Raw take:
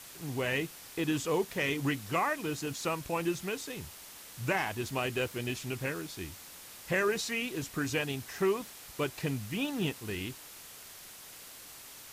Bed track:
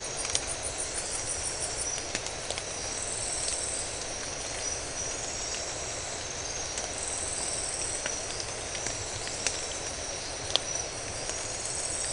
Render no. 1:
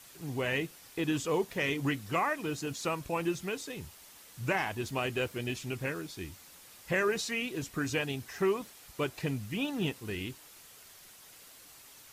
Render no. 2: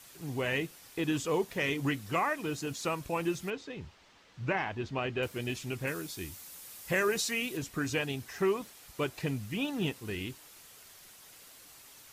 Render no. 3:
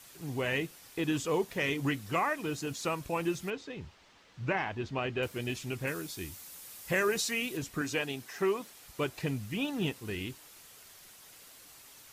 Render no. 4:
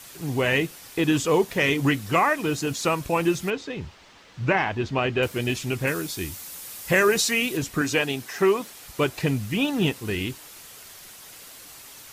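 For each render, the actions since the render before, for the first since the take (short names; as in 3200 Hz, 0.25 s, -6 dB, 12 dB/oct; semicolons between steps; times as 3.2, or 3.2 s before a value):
denoiser 6 dB, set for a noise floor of -50 dBFS
3.5–5.23 air absorption 170 m; 5.87–7.57 high shelf 6700 Hz +9.5 dB
7.81–8.7 Bessel high-pass 200 Hz
gain +9.5 dB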